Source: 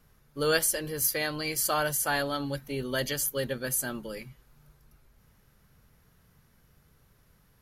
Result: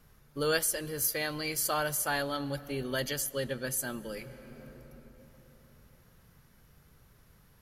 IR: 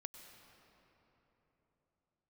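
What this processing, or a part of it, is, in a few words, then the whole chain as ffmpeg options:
ducked reverb: -filter_complex "[0:a]asplit=3[link_01][link_02][link_03];[1:a]atrim=start_sample=2205[link_04];[link_02][link_04]afir=irnorm=-1:irlink=0[link_05];[link_03]apad=whole_len=335657[link_06];[link_05][link_06]sidechaincompress=threshold=-39dB:ratio=8:attack=28:release=717,volume=6dB[link_07];[link_01][link_07]amix=inputs=2:normalize=0,asettb=1/sr,asplit=3[link_08][link_09][link_10];[link_08]atrim=end=3.224[link_11];[link_09]atrim=start=3.22:end=3.77,asetpts=PTS-STARTPTS,afade=type=in:duration=0.004:curve=qsin,afade=type=out:start_time=0.546:duration=0.004:curve=qsin,lowpass=11000[link_12];[link_10]atrim=start=3.766[link_13];[link_11][link_12]acrossfade=duration=0.004:curve1=hsin:curve2=qsin[link_14];[link_14][link_13]acrossfade=duration=0.004:curve1=qsin:curve2=hsin,volume=-4.5dB"

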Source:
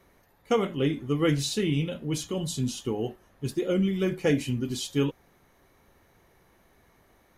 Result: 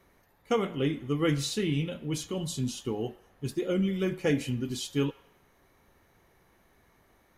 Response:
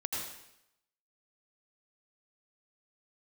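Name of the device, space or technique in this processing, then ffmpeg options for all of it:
filtered reverb send: -filter_complex "[0:a]asplit=2[link_01][link_02];[link_02]highpass=frequency=550:width=0.5412,highpass=frequency=550:width=1.3066,lowpass=3100[link_03];[1:a]atrim=start_sample=2205[link_04];[link_03][link_04]afir=irnorm=-1:irlink=0,volume=-18dB[link_05];[link_01][link_05]amix=inputs=2:normalize=0,volume=-2.5dB"

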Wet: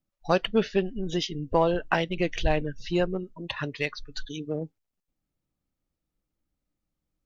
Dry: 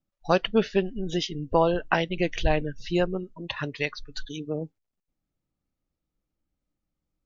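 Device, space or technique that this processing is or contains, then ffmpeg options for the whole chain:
parallel distortion: -filter_complex "[0:a]asplit=2[link_01][link_02];[link_02]asoftclip=type=hard:threshold=-23.5dB,volume=-13dB[link_03];[link_01][link_03]amix=inputs=2:normalize=0,volume=-2dB"

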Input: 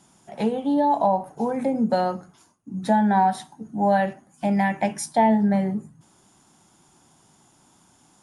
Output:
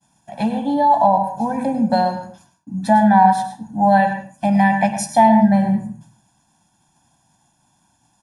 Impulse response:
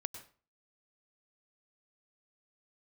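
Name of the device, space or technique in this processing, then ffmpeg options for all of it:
microphone above a desk: -filter_complex "[0:a]agate=range=-33dB:threshold=-50dB:ratio=3:detection=peak,aecho=1:1:1.2:0.88[link_01];[1:a]atrim=start_sample=2205[link_02];[link_01][link_02]afir=irnorm=-1:irlink=0,volume=4dB"

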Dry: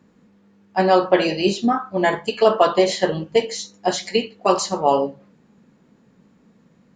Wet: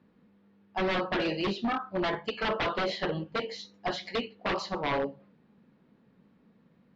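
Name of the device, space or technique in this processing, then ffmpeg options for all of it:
synthesiser wavefolder: -af "aeval=exprs='0.168*(abs(mod(val(0)/0.168+3,4)-2)-1)':channel_layout=same,lowpass=frequency=4300:width=0.5412,lowpass=frequency=4300:width=1.3066,volume=-7.5dB"

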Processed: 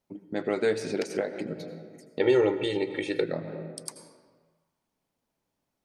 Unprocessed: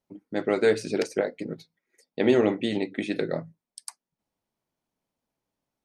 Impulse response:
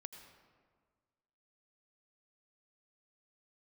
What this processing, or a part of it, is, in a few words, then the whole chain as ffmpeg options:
ducked reverb: -filter_complex "[0:a]asplit=3[link_01][link_02][link_03];[1:a]atrim=start_sample=2205[link_04];[link_02][link_04]afir=irnorm=-1:irlink=0[link_05];[link_03]apad=whole_len=257663[link_06];[link_05][link_06]sidechaincompress=threshold=-39dB:ratio=4:attack=34:release=134,volume=11.5dB[link_07];[link_01][link_07]amix=inputs=2:normalize=0,asettb=1/sr,asplit=3[link_08][link_09][link_10];[link_08]atrim=end=2.204[link_11];[link_09]atrim=start=2.2:end=3.24,asetpts=PTS-STARTPTS,afade=type=in:duration=0.004:curve=qsin,afade=type=out:start_time=1.036:duration=0.004:curve=qsin,aecho=1:1:2.2:0.93,atrim=end_sample=45864[link_12];[link_10]atrim=start=3.236[link_13];[link_11][link_12]acrossfade=duration=0.004:curve1=hsin:curve2=qsin[link_14];[link_14][link_13]acrossfade=duration=0.004:curve1=qsin:curve2=hsin,volume=-6.5dB"

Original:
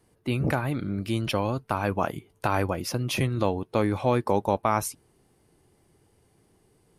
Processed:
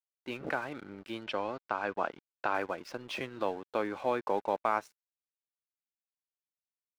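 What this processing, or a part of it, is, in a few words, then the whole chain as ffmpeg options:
pocket radio on a weak battery: -filter_complex "[0:a]highpass=360,lowpass=3700,aeval=exprs='sgn(val(0))*max(abs(val(0))-0.00473,0)':channel_layout=same,equalizer=frequency=1500:width_type=o:width=0.23:gain=5,asplit=3[link_01][link_02][link_03];[link_01]afade=type=out:start_time=1.23:duration=0.02[link_04];[link_02]lowpass=5700,afade=type=in:start_time=1.23:duration=0.02,afade=type=out:start_time=2.53:duration=0.02[link_05];[link_03]afade=type=in:start_time=2.53:duration=0.02[link_06];[link_04][link_05][link_06]amix=inputs=3:normalize=0,volume=-5dB"

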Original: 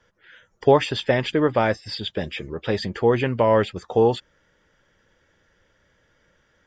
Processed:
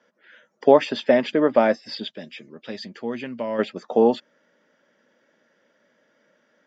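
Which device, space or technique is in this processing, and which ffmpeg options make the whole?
television speaker: -filter_complex "[0:a]asplit=3[link_01][link_02][link_03];[link_01]afade=type=out:start_time=2.09:duration=0.02[link_04];[link_02]equalizer=frequency=580:width=0.3:gain=-13.5,afade=type=in:start_time=2.09:duration=0.02,afade=type=out:start_time=3.58:duration=0.02[link_05];[link_03]afade=type=in:start_time=3.58:duration=0.02[link_06];[link_04][link_05][link_06]amix=inputs=3:normalize=0,highpass=frequency=190:width=0.5412,highpass=frequency=190:width=1.3066,equalizer=frequency=240:width_type=q:width=4:gain=9,equalizer=frequency=610:width_type=q:width=4:gain=8,equalizer=frequency=3300:width_type=q:width=4:gain=-3,lowpass=frequency=6500:width=0.5412,lowpass=frequency=6500:width=1.3066,volume=-1.5dB"

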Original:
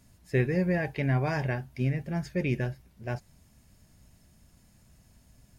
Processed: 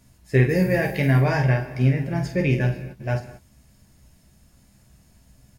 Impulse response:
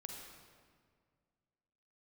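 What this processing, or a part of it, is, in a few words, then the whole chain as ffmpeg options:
keyed gated reverb: -filter_complex "[0:a]asettb=1/sr,asplit=3[link_01][link_02][link_03];[link_01]atrim=end=0.494[link_04];[link_02]atrim=start=0.49:end=1.2,asetpts=PTS-STARTPTS,afade=type=in:duration=0.004:curve=qsin,afade=type=out:start_time=0.706:duration=0.004:curve=qsin,aemphasis=mode=production:type=50fm[link_05];[link_03]atrim=start=1.196[link_06];[link_04][link_05]acrossfade=duration=0.004:curve1=hsin:curve2=qsin[link_07];[link_07][link_06]acrossfade=duration=0.004:curve1=qsin:curve2=hsin,aecho=1:1:15|48:0.473|0.447,asplit=3[link_08][link_09][link_10];[1:a]atrim=start_sample=2205[link_11];[link_09][link_11]afir=irnorm=-1:irlink=0[link_12];[link_10]apad=whole_len=248625[link_13];[link_12][link_13]sidechaingate=range=-33dB:threshold=-50dB:ratio=16:detection=peak,volume=-1.5dB[link_14];[link_08][link_14]amix=inputs=2:normalize=0,volume=2.5dB"

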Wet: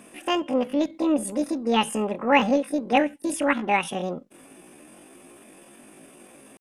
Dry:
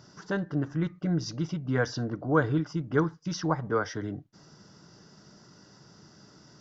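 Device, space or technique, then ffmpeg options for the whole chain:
chipmunk voice: -af "asetrate=78577,aresample=44100,atempo=0.561231,volume=5.5dB"

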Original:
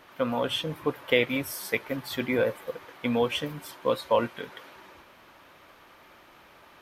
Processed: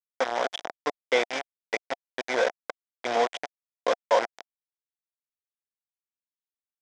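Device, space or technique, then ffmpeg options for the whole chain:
hand-held game console: -af "acrusher=bits=3:mix=0:aa=0.000001,highpass=460,equalizer=frequency=710:width_type=q:width=4:gain=8,equalizer=frequency=1200:width_type=q:width=4:gain=-4,equalizer=frequency=2700:width_type=q:width=4:gain=-9,equalizer=frequency=4300:width_type=q:width=4:gain=-9,lowpass=frequency=5300:width=0.5412,lowpass=frequency=5300:width=1.3066,volume=1dB"

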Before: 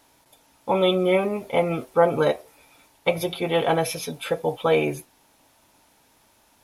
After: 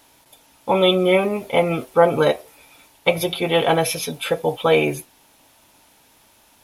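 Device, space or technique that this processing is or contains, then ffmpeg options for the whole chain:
presence and air boost: -af "equalizer=frequency=3000:width_type=o:width=0.91:gain=3.5,highshelf=frequency=9500:gain=5,volume=3.5dB"

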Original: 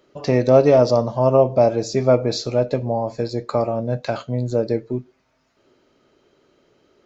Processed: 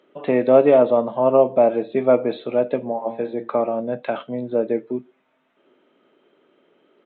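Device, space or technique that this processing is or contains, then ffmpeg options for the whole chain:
Bluetooth headset: -filter_complex "[0:a]asplit=3[link_01][link_02][link_03];[link_01]afade=type=out:start_time=2.88:duration=0.02[link_04];[link_02]bandreject=frequency=57.34:width_type=h:width=4,bandreject=frequency=114.68:width_type=h:width=4,bandreject=frequency=172.02:width_type=h:width=4,bandreject=frequency=229.36:width_type=h:width=4,bandreject=frequency=286.7:width_type=h:width=4,bandreject=frequency=344.04:width_type=h:width=4,bandreject=frequency=401.38:width_type=h:width=4,bandreject=frequency=458.72:width_type=h:width=4,bandreject=frequency=516.06:width_type=h:width=4,bandreject=frequency=573.4:width_type=h:width=4,bandreject=frequency=630.74:width_type=h:width=4,bandreject=frequency=688.08:width_type=h:width=4,bandreject=frequency=745.42:width_type=h:width=4,bandreject=frequency=802.76:width_type=h:width=4,bandreject=frequency=860.1:width_type=h:width=4,bandreject=frequency=917.44:width_type=h:width=4,bandreject=frequency=974.78:width_type=h:width=4,bandreject=frequency=1032.12:width_type=h:width=4,bandreject=frequency=1089.46:width_type=h:width=4,bandreject=frequency=1146.8:width_type=h:width=4,bandreject=frequency=1204.14:width_type=h:width=4,bandreject=frequency=1261.48:width_type=h:width=4,bandreject=frequency=1318.82:width_type=h:width=4,bandreject=frequency=1376.16:width_type=h:width=4,bandreject=frequency=1433.5:width_type=h:width=4,bandreject=frequency=1490.84:width_type=h:width=4,bandreject=frequency=1548.18:width_type=h:width=4,bandreject=frequency=1605.52:width_type=h:width=4,bandreject=frequency=1662.86:width_type=h:width=4,bandreject=frequency=1720.2:width_type=h:width=4,bandreject=frequency=1777.54:width_type=h:width=4,bandreject=frequency=1834.88:width_type=h:width=4,bandreject=frequency=1892.22:width_type=h:width=4,bandreject=frequency=1949.56:width_type=h:width=4,bandreject=frequency=2006.9:width_type=h:width=4,afade=type=in:start_time=2.88:duration=0.02,afade=type=out:start_time=3.47:duration=0.02[link_05];[link_03]afade=type=in:start_time=3.47:duration=0.02[link_06];[link_04][link_05][link_06]amix=inputs=3:normalize=0,highpass=frequency=190:width=0.5412,highpass=frequency=190:width=1.3066,aresample=8000,aresample=44100" -ar 16000 -c:a sbc -b:a 64k

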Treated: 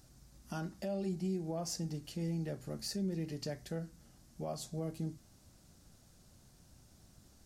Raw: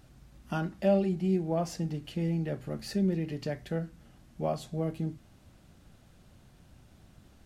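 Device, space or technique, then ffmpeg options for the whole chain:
over-bright horn tweeter: -af "highshelf=frequency=4000:width_type=q:width=1.5:gain=8.5,alimiter=limit=-23.5dB:level=0:latency=1:release=115,volume=-5.5dB"

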